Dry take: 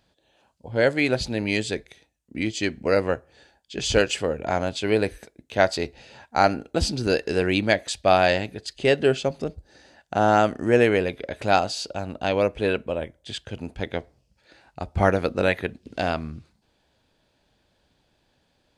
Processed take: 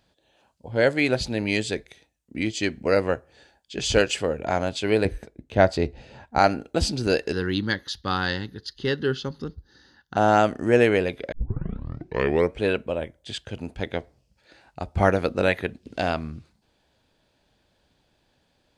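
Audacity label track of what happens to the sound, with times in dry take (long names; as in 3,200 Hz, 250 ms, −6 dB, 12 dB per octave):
5.050000	6.390000	spectral tilt −2.5 dB per octave
7.320000	10.170000	phaser with its sweep stopped centre 2,400 Hz, stages 6
11.320000	11.320000	tape start 1.30 s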